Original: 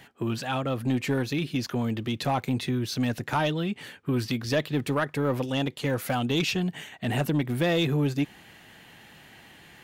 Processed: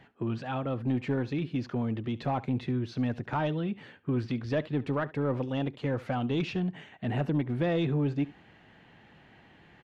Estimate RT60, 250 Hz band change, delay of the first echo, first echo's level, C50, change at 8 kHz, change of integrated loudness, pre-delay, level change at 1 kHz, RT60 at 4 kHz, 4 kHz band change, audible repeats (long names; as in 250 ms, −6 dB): no reverb audible, −2.5 dB, 71 ms, −19.5 dB, no reverb audible, below −20 dB, −3.5 dB, no reverb audible, −4.5 dB, no reverb audible, −12.0 dB, 1